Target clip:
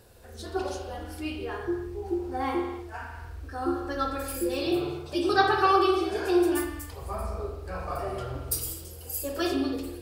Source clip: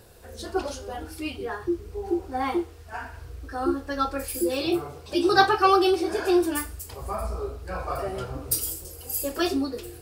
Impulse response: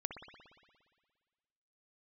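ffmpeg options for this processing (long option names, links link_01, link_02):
-filter_complex "[0:a]asettb=1/sr,asplit=3[link_01][link_02][link_03];[link_01]atrim=end=5.364[link_04];[link_02]atrim=start=5.36:end=6.17,asetpts=PTS-STARTPTS,afade=type=in:duration=0.004:curve=qsin,afade=type=out:start_time=0.806:duration=0.004:curve=qsin,acrossover=split=4900[link_05][link_06];[link_06]acompressor=threshold=-43dB:ratio=4:attack=1:release=60[link_07];[link_05][link_07]amix=inputs=2:normalize=0[link_08];[link_03]atrim=start=6.166[link_09];[link_04][link_08]acrossfade=duration=0.004:curve1=hsin:curve2=qsin[link_10];[link_10][link_09]acrossfade=duration=0.004:curve1=qsin:curve2=hsin[link_11];[1:a]atrim=start_sample=2205,afade=type=out:start_time=0.43:duration=0.01,atrim=end_sample=19404,asetrate=52920,aresample=44100[link_12];[link_11][link_12]afir=irnorm=-1:irlink=0"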